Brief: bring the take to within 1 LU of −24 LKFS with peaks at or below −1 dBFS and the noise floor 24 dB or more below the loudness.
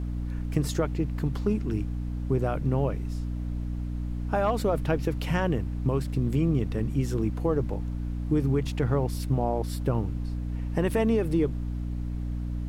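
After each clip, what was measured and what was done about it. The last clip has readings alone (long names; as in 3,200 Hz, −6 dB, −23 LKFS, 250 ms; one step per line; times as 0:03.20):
mains hum 60 Hz; hum harmonics up to 300 Hz; level of the hum −29 dBFS; background noise floor −32 dBFS; target noise floor −53 dBFS; integrated loudness −28.5 LKFS; sample peak −11.5 dBFS; target loudness −24.0 LKFS
→ mains-hum notches 60/120/180/240/300 Hz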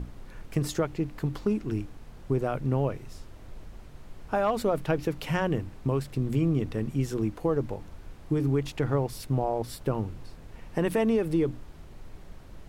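mains hum none found; background noise floor −47 dBFS; target noise floor −53 dBFS
→ noise reduction from a noise print 6 dB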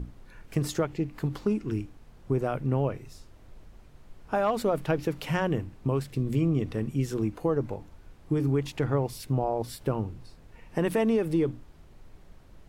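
background noise floor −53 dBFS; integrated loudness −29.0 LKFS; sample peak −13.5 dBFS; target loudness −24.0 LKFS
→ level +5 dB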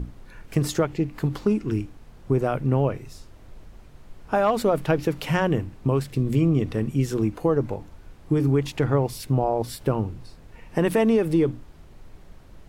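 integrated loudness −24.0 LKFS; sample peak −8.5 dBFS; background noise floor −48 dBFS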